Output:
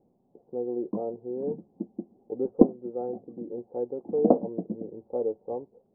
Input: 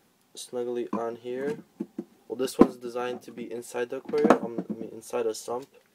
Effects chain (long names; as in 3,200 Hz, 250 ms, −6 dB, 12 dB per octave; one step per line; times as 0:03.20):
Butterworth low-pass 750 Hz 36 dB per octave